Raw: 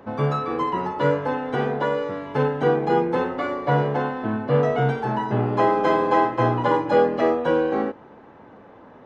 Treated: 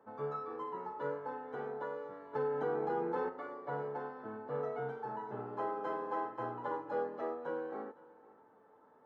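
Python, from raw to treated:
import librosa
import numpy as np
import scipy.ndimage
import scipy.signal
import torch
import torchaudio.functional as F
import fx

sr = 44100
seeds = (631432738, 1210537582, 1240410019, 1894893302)

p1 = fx.highpass(x, sr, hz=280.0, slope=6)
p2 = fx.high_shelf_res(p1, sr, hz=1900.0, db=-8.0, q=1.5)
p3 = fx.comb_fb(p2, sr, f0_hz=440.0, decay_s=0.15, harmonics='all', damping=0.0, mix_pct=80)
p4 = p3 + fx.echo_single(p3, sr, ms=507, db=-21.5, dry=0)
p5 = fx.env_flatten(p4, sr, amount_pct=70, at=(2.33, 3.28), fade=0.02)
y = F.gain(torch.from_numpy(p5), -7.0).numpy()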